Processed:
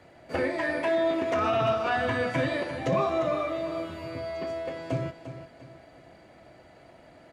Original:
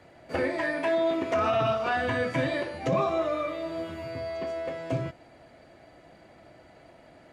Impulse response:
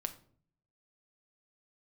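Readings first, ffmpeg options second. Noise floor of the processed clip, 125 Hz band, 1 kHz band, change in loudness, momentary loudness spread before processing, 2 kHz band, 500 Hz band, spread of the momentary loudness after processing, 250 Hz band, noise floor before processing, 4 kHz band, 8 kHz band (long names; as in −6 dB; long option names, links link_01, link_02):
−54 dBFS, +0.5 dB, +0.5 dB, +0.5 dB, 9 LU, +0.5 dB, +0.5 dB, 11 LU, +0.5 dB, −55 dBFS, +0.5 dB, can't be measured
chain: -af "aecho=1:1:349|698|1047|1396:0.282|0.104|0.0386|0.0143"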